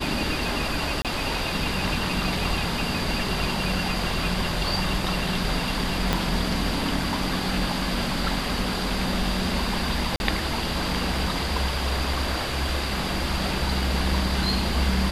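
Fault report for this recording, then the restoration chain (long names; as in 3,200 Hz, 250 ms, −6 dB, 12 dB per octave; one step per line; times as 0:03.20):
0:01.02–0:01.05: drop-out 27 ms
0:06.13: click −7 dBFS
0:10.16–0:10.20: drop-out 41 ms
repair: click removal
repair the gap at 0:01.02, 27 ms
repair the gap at 0:10.16, 41 ms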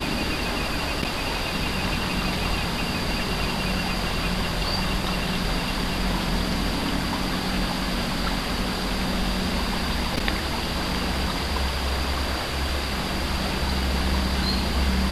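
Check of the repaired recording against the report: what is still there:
0:06.13: click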